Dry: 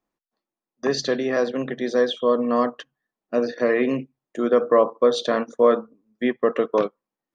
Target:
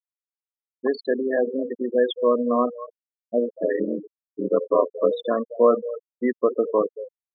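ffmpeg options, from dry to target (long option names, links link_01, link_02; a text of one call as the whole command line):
ffmpeg -i in.wav -filter_complex "[0:a]asplit=2[link_01][link_02];[link_02]adelay=230,highpass=300,lowpass=3400,asoftclip=type=hard:threshold=-14.5dB,volume=-10dB[link_03];[link_01][link_03]amix=inputs=2:normalize=0,asettb=1/sr,asplit=3[link_04][link_05][link_06];[link_04]atrim=end=3.484[link_07];[link_05]atrim=start=3.48:end=5.11,asetpts=PTS-STARTPTS,afade=type=in:duration=0.004:curve=qsin,afade=type=out:start_time=1.626:duration=0.004:curve=qsin,aeval=exprs='val(0)*sin(2*PI*43*n/s)':channel_layout=same[link_08];[link_06]atrim=start=5.106[link_09];[link_07][link_08]acrossfade=duration=0.004:curve1=hsin:curve2=qsin[link_10];[link_10][link_09]acrossfade=duration=0.004:curve1=qsin:curve2=hsin,highpass=170,lowpass=4200,afftfilt=real='re*gte(hypot(re,im),0.158)':imag='im*gte(hypot(re,im),0.158)':win_size=1024:overlap=0.75" out.wav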